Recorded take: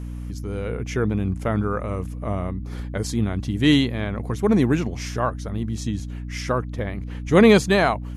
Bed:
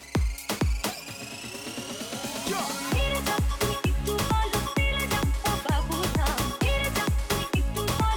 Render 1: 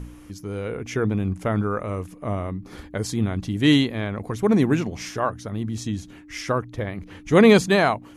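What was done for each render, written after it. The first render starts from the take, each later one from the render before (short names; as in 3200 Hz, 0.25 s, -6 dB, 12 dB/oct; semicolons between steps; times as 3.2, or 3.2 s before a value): de-hum 60 Hz, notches 4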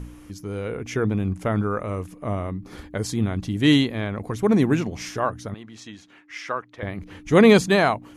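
5.54–6.83 band-pass 1700 Hz, Q 0.65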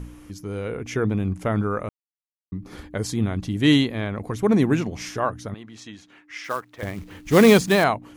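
1.89–2.52 mute; 6.44–7.84 short-mantissa float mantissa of 2-bit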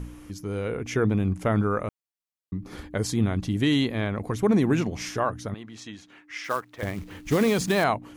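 limiter -12.5 dBFS, peak gain reduction 10 dB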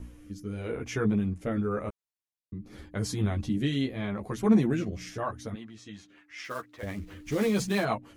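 chorus voices 4, 0.34 Hz, delay 12 ms, depth 3.2 ms; rotary speaker horn 0.85 Hz, later 6 Hz, at 5.49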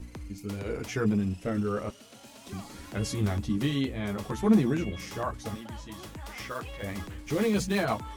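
add bed -17 dB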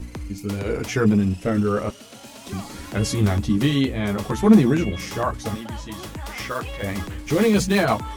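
gain +8.5 dB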